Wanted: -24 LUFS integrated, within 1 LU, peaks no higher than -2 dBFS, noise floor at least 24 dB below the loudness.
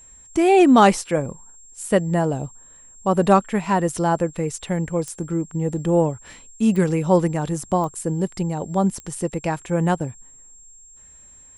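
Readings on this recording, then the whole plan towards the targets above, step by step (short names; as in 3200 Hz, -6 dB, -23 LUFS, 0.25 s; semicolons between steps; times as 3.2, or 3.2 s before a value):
clicks 5; steady tone 7500 Hz; tone level -45 dBFS; loudness -21.0 LUFS; peak -2.0 dBFS; loudness target -24.0 LUFS
-> de-click; notch 7500 Hz, Q 30; gain -3 dB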